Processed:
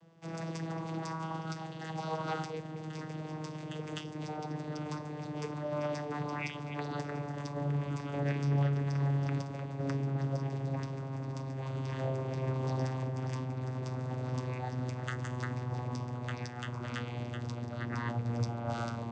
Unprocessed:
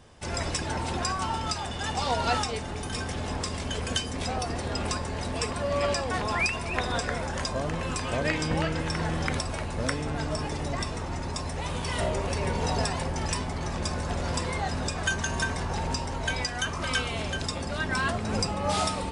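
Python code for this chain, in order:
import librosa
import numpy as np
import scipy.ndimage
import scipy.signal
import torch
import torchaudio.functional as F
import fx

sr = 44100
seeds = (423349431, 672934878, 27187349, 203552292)

y = fx.vocoder_glide(x, sr, note=52, semitones=-6)
y = y * librosa.db_to_amplitude(-4.0)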